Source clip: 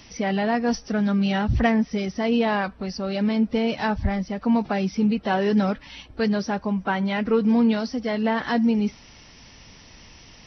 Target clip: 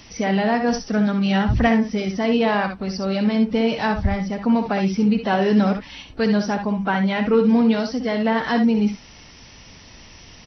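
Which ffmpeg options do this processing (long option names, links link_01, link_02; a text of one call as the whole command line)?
ffmpeg -i in.wav -af "aecho=1:1:62|73:0.376|0.251,volume=2.5dB" out.wav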